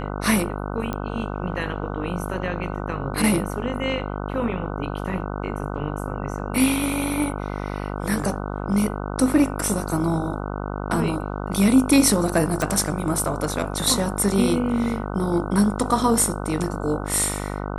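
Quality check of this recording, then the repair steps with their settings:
buzz 50 Hz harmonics 30 -29 dBFS
0.93 pop -14 dBFS
12.62 pop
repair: de-click; de-hum 50 Hz, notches 30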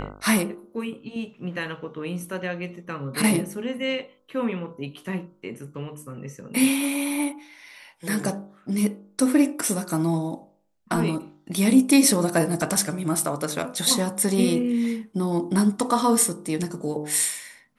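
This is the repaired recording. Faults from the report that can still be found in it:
none

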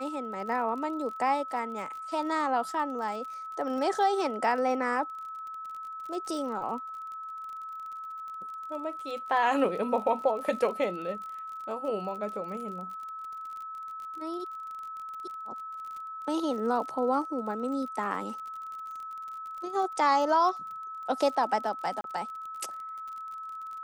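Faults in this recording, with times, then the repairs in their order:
crackle 39/s -38 dBFS
tone 1300 Hz -37 dBFS
22.01–22.04 gap 32 ms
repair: de-click; notch 1300 Hz, Q 30; interpolate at 22.01, 32 ms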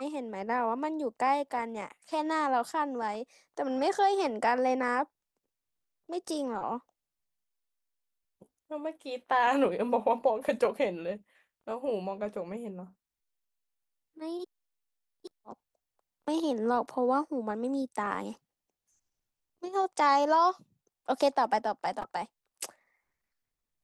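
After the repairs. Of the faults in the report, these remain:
none

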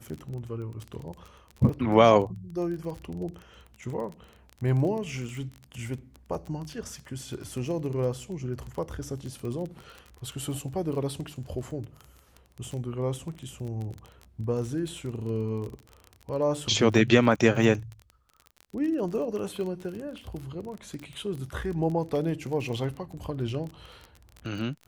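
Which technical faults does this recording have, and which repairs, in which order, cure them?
crackle 25/s -33 dBFS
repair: de-click

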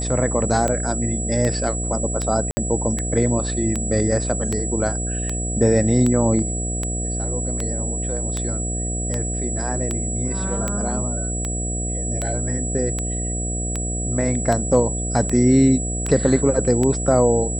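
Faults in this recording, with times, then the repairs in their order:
buzz 60 Hz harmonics 12 -26 dBFS
tick 78 rpm -10 dBFS
tone 7800 Hz -27 dBFS
2.51–2.57 gap 60 ms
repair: de-click; notch 7800 Hz, Q 30; de-hum 60 Hz, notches 12; interpolate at 2.51, 60 ms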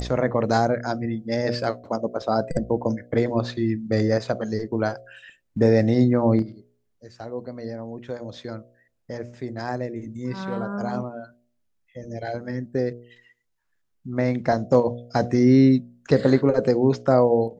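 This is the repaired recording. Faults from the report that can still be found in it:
tone 7800 Hz

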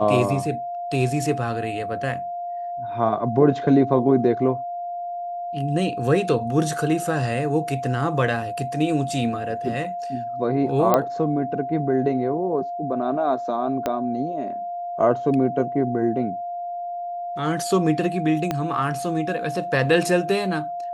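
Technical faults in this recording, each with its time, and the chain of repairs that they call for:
tone 700 Hz -27 dBFS
10.94 pop -5 dBFS
13.86 pop -10 dBFS
18.51 pop -10 dBFS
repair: de-click; notch 700 Hz, Q 30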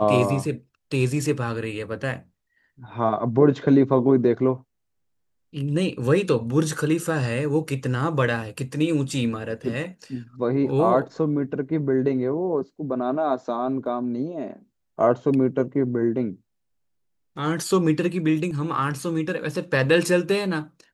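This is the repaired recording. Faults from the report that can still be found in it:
13.86 pop
18.51 pop

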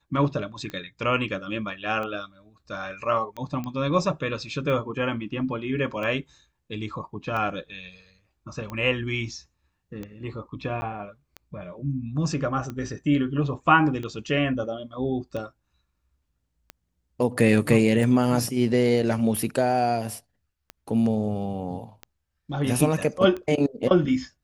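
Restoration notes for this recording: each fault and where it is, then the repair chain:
tick 45 rpm -21 dBFS
3.64 pop -20 dBFS
10.81–10.82 gap 10 ms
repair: de-click; interpolate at 10.81, 10 ms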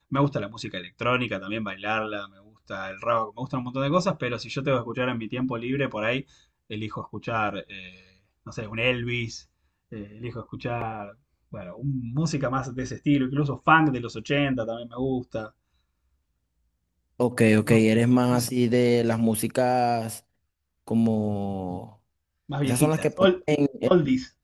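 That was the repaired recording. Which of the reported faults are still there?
3.64 pop

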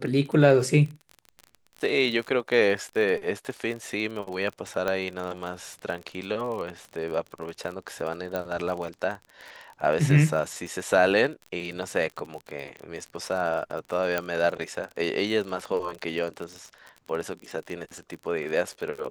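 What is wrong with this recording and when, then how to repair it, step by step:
crackle 35/s -32 dBFS
4.88 pop -14 dBFS
8.36 pop -16 dBFS
14.18 pop -12 dBFS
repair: de-click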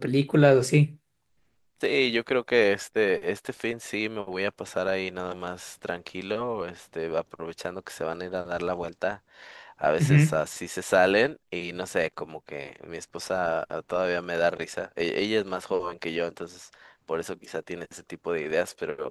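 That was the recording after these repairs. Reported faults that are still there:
8.36 pop

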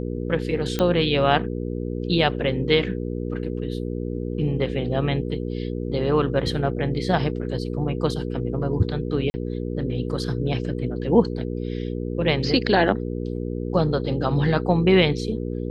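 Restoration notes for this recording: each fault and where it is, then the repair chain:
hum 60 Hz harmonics 8 -28 dBFS
0.79 pop -10 dBFS
9.3–9.34 gap 40 ms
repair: de-click; de-hum 60 Hz, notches 8; interpolate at 9.3, 40 ms

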